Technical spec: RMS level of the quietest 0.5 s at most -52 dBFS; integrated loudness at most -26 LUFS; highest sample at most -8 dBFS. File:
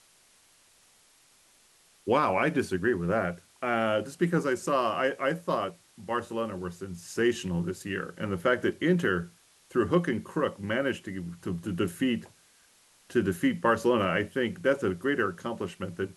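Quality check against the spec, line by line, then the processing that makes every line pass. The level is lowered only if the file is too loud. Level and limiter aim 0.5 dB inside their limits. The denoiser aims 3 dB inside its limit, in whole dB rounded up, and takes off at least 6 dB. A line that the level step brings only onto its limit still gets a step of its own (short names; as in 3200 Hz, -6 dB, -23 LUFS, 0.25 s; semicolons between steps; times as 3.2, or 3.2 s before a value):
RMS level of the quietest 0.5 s -62 dBFS: OK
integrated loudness -29.0 LUFS: OK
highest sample -10.0 dBFS: OK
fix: none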